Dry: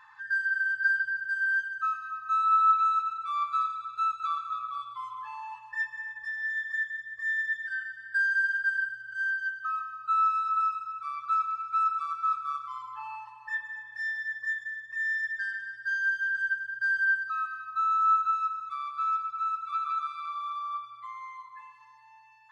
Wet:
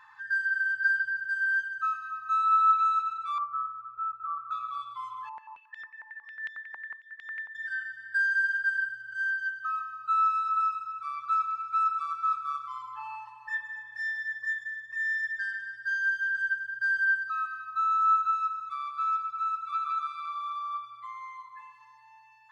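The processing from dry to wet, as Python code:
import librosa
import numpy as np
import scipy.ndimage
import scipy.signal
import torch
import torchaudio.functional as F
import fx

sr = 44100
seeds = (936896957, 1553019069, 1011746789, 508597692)

y = fx.lowpass(x, sr, hz=1200.0, slope=24, at=(3.38, 4.51))
y = fx.filter_held_bandpass(y, sr, hz=11.0, low_hz=890.0, high_hz=3300.0, at=(5.29, 7.55))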